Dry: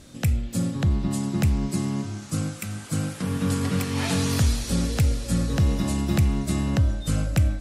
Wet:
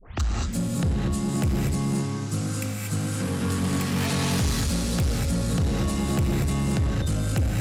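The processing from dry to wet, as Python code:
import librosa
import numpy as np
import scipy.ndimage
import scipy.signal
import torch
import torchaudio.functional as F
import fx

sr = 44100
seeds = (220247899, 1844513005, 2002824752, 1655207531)

y = fx.tape_start_head(x, sr, length_s=0.39)
y = fx.rev_gated(y, sr, seeds[0], gate_ms=260, shape='rising', drr_db=-1.0)
y = 10.0 ** (-18.5 / 20.0) * np.tanh(y / 10.0 ** (-18.5 / 20.0))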